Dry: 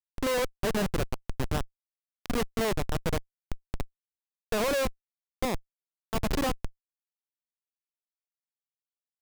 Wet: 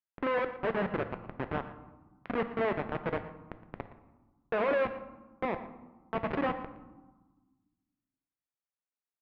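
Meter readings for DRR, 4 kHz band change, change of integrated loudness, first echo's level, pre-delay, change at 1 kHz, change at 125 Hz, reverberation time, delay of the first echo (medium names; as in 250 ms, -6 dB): 8.5 dB, -13.0 dB, -2.5 dB, -16.0 dB, 3 ms, +0.5 dB, -7.5 dB, 1.3 s, 116 ms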